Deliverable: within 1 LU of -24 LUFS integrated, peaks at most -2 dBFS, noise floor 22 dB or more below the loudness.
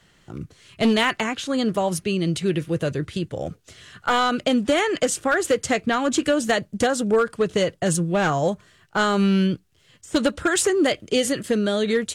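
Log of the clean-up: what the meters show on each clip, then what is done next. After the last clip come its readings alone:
clipped 0.6%; flat tops at -12.5 dBFS; loudness -22.0 LUFS; peak -12.5 dBFS; loudness target -24.0 LUFS
-> clip repair -12.5 dBFS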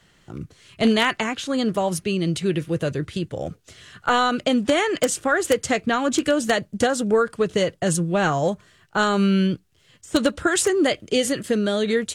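clipped 0.0%; loudness -22.0 LUFS; peak -3.5 dBFS; loudness target -24.0 LUFS
-> gain -2 dB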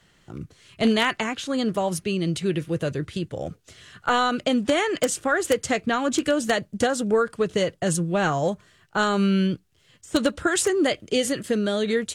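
loudness -24.0 LUFS; peak -5.5 dBFS; noise floor -61 dBFS

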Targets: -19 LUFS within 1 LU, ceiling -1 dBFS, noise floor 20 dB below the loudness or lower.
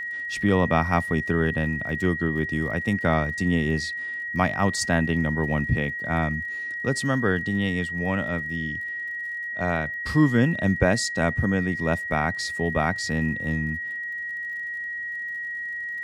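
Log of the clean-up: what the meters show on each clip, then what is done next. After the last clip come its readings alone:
ticks 47/s; steady tone 1900 Hz; tone level -29 dBFS; loudness -25.0 LUFS; peak -5.0 dBFS; loudness target -19.0 LUFS
-> de-click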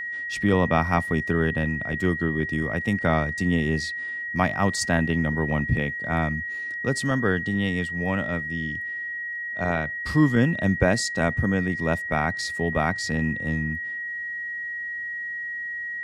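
ticks 0.19/s; steady tone 1900 Hz; tone level -29 dBFS
-> notch 1900 Hz, Q 30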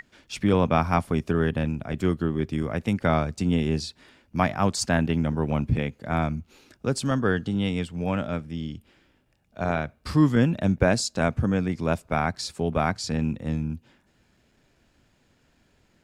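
steady tone none; loudness -25.5 LUFS; peak -4.5 dBFS; loudness target -19.0 LUFS
-> gain +6.5 dB; limiter -1 dBFS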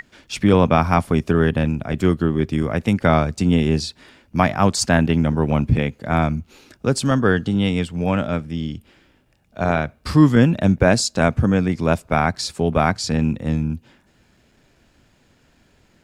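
loudness -19.5 LUFS; peak -1.0 dBFS; noise floor -59 dBFS

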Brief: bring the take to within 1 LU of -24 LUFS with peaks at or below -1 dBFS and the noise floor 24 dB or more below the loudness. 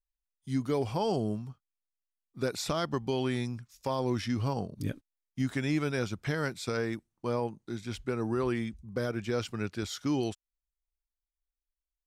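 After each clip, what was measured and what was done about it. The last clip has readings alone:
loudness -33.0 LUFS; peak -19.5 dBFS; loudness target -24.0 LUFS
-> gain +9 dB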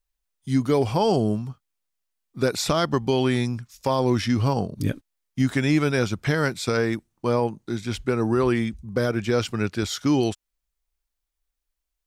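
loudness -24.0 LUFS; peak -10.5 dBFS; noise floor -82 dBFS

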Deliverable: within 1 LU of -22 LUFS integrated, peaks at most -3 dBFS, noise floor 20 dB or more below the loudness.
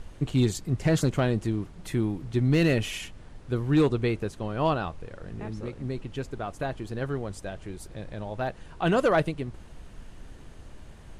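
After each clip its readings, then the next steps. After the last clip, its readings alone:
clipped 0.3%; flat tops at -14.5 dBFS; noise floor -47 dBFS; noise floor target -48 dBFS; loudness -28.0 LUFS; peak -14.5 dBFS; loudness target -22.0 LUFS
-> clip repair -14.5 dBFS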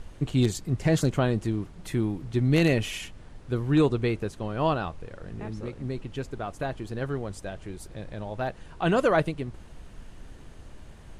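clipped 0.0%; noise floor -47 dBFS; noise floor target -48 dBFS
-> noise print and reduce 6 dB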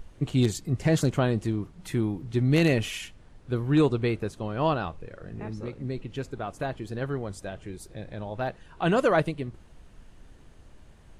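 noise floor -52 dBFS; loudness -27.5 LUFS; peak -7.5 dBFS; loudness target -22.0 LUFS
-> gain +5.5 dB; limiter -3 dBFS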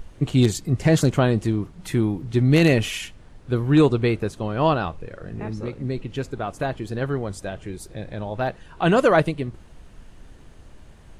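loudness -22.5 LUFS; peak -3.0 dBFS; noise floor -47 dBFS

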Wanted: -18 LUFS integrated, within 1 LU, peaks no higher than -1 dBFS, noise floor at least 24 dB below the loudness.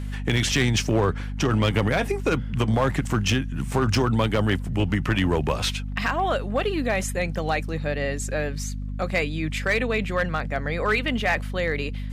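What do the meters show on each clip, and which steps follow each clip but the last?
clipped 0.9%; flat tops at -14.5 dBFS; hum 50 Hz; harmonics up to 250 Hz; hum level -28 dBFS; loudness -24.5 LUFS; peak -14.5 dBFS; loudness target -18.0 LUFS
-> clip repair -14.5 dBFS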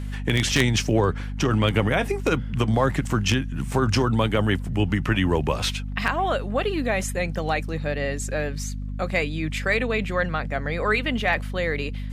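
clipped 0.0%; hum 50 Hz; harmonics up to 250 Hz; hum level -28 dBFS
-> de-hum 50 Hz, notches 5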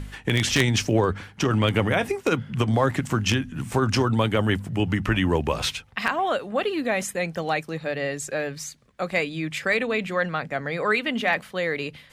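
hum none; loudness -24.5 LUFS; peak -5.0 dBFS; loudness target -18.0 LUFS
-> gain +6.5 dB; limiter -1 dBFS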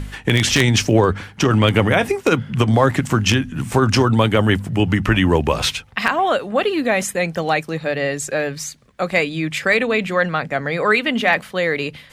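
loudness -18.0 LUFS; peak -1.0 dBFS; noise floor -44 dBFS

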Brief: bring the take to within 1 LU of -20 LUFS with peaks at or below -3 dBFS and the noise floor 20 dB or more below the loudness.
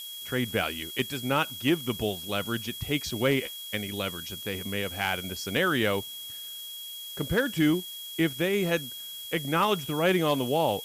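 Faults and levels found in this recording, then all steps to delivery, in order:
steady tone 3300 Hz; tone level -39 dBFS; noise floor -40 dBFS; noise floor target -49 dBFS; loudness -28.5 LUFS; peak -14.0 dBFS; loudness target -20.0 LUFS
-> notch 3300 Hz, Q 30; noise print and reduce 9 dB; gain +8.5 dB

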